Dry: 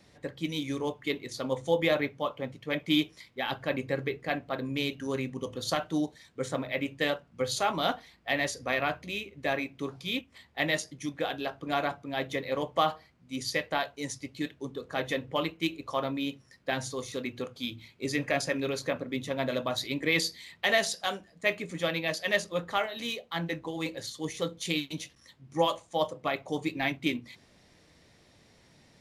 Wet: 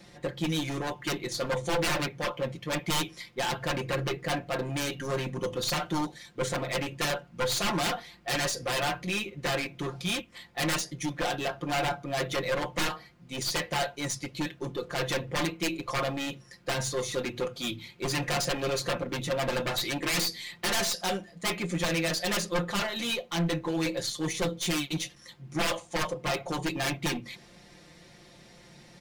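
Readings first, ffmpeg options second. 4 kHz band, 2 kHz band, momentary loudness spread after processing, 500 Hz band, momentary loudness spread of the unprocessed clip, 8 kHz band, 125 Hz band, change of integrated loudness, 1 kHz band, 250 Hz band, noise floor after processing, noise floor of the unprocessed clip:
+2.5 dB, 0.0 dB, 6 LU, −0.5 dB, 9 LU, +7.0 dB, +5.0 dB, +1.0 dB, +0.5 dB, 0.0 dB, −55 dBFS, −61 dBFS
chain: -af "aeval=exprs='0.266*(cos(1*acos(clip(val(0)/0.266,-1,1)))-cos(1*PI/2))+0.0335*(cos(5*acos(clip(val(0)/0.266,-1,1)))-cos(5*PI/2))+0.0473*(cos(6*acos(clip(val(0)/0.266,-1,1)))-cos(6*PI/2))+0.133*(cos(7*acos(clip(val(0)/0.266,-1,1)))-cos(7*PI/2))':channel_layout=same,volume=26.5dB,asoftclip=hard,volume=-26.5dB,aecho=1:1:5.7:0.71"

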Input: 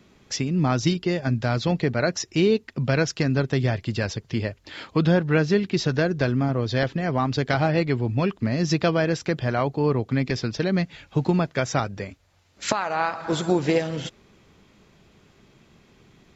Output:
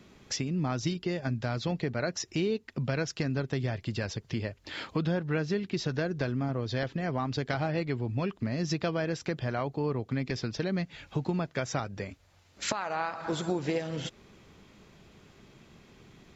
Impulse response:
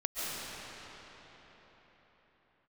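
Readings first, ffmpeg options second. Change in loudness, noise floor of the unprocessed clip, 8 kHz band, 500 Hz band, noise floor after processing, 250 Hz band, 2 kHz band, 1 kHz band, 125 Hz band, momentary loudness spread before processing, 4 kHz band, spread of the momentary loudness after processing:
−8.5 dB, −59 dBFS, can't be measured, −9.0 dB, −62 dBFS, −8.5 dB, −8.5 dB, −8.5 dB, −8.0 dB, 7 LU, −7.0 dB, 5 LU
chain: -af "acompressor=threshold=-34dB:ratio=2"

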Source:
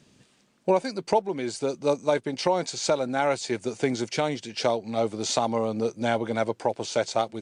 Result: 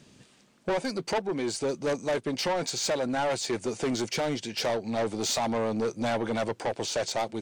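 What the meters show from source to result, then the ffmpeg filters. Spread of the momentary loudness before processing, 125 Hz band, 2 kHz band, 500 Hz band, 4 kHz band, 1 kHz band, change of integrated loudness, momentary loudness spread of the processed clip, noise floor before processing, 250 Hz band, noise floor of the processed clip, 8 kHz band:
3 LU, −2.0 dB, −1.0 dB, −3.5 dB, +0.5 dB, −4.0 dB, −2.5 dB, 3 LU, −63 dBFS, −1.5 dB, −60 dBFS, +1.0 dB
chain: -af "asoftclip=type=tanh:threshold=-26.5dB,volume=3dB"

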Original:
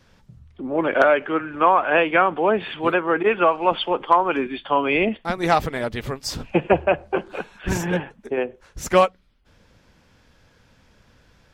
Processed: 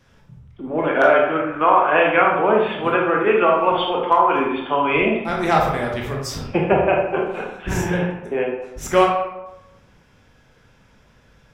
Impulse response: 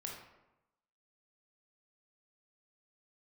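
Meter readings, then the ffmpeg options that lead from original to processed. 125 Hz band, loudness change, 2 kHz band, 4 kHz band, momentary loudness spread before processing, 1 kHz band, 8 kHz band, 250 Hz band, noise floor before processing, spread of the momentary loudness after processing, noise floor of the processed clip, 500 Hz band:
+3.5 dB, +2.5 dB, +2.0 dB, +0.5 dB, 10 LU, +2.5 dB, +0.5 dB, +2.0 dB, −58 dBFS, 11 LU, −55 dBFS, +2.5 dB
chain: -filter_complex "[0:a]equalizer=frequency=4400:width_type=o:width=0.24:gain=-6.5[link_01];[1:a]atrim=start_sample=2205[link_02];[link_01][link_02]afir=irnorm=-1:irlink=0,volume=4dB"

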